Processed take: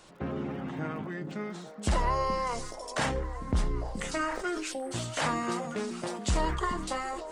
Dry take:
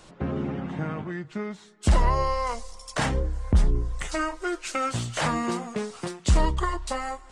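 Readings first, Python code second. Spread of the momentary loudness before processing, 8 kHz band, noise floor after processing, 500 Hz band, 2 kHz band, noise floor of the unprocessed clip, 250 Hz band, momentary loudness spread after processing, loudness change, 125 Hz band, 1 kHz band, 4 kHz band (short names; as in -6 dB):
10 LU, -2.5 dB, -43 dBFS, -3.0 dB, -2.5 dB, -51 dBFS, -4.0 dB, 8 LU, -4.5 dB, -8.0 dB, -3.0 dB, -2.5 dB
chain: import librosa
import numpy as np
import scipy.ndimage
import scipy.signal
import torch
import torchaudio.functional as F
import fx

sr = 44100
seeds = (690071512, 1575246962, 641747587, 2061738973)

y = fx.low_shelf(x, sr, hz=180.0, db=-7.0)
y = fx.spec_erase(y, sr, start_s=4.72, length_s=0.2, low_hz=880.0, high_hz=8000.0)
y = fx.dmg_crackle(y, sr, seeds[0], per_s=48.0, level_db=-49.0)
y = fx.echo_stepped(y, sr, ms=424, hz=220.0, octaves=1.4, feedback_pct=70, wet_db=-5)
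y = fx.sustainer(y, sr, db_per_s=44.0)
y = y * 10.0 ** (-3.0 / 20.0)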